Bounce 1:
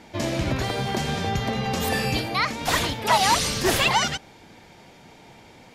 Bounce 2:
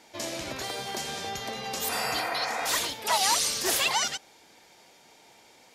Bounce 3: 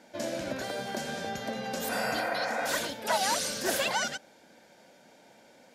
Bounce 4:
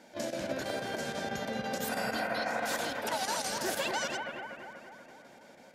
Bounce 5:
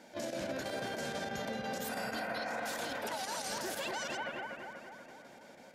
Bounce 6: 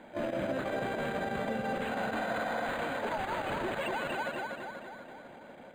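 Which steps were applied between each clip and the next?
bass and treble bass −14 dB, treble +9 dB; healed spectral selection 0:01.92–0:02.67, 450–2,600 Hz after; level −7 dB
hollow resonant body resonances 220/550/1,500 Hz, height 13 dB, ringing for 20 ms; level −6.5 dB
downward compressor 2.5 to 1, threshold −32 dBFS, peak gain reduction 6.5 dB; square-wave tremolo 6.1 Hz, depth 65%, duty 85%; on a send: bucket-brigade delay 240 ms, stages 4,096, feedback 59%, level −4.5 dB
brickwall limiter −29 dBFS, peak gain reduction 9 dB
linearly interpolated sample-rate reduction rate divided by 8×; level +5.5 dB

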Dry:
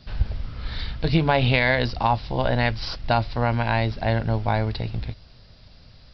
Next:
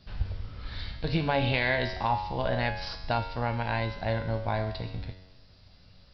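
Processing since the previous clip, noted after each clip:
tuned comb filter 93 Hz, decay 1 s, harmonics all, mix 80%
level +4.5 dB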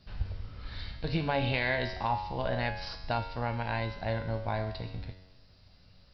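notch filter 3,400 Hz, Q 26
level −3 dB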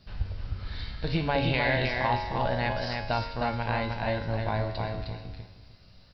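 repeating echo 309 ms, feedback 21%, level −4 dB
level +2.5 dB

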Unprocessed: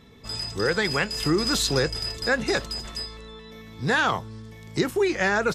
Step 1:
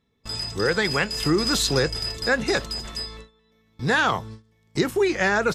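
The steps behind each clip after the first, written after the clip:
noise gate with hold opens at −32 dBFS
level +1.5 dB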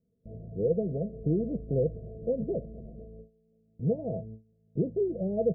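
Chebyshev low-pass with heavy ripple 680 Hz, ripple 9 dB

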